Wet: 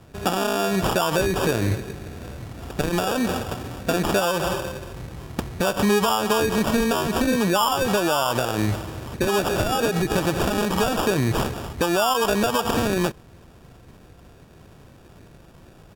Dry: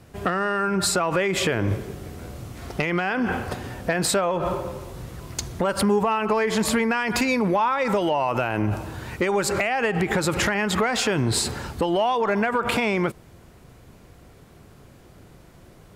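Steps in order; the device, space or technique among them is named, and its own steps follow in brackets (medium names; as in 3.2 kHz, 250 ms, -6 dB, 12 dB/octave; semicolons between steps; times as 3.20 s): crushed at another speed (playback speed 1.25×; sample-and-hold 17×; playback speed 0.8×); trim +1 dB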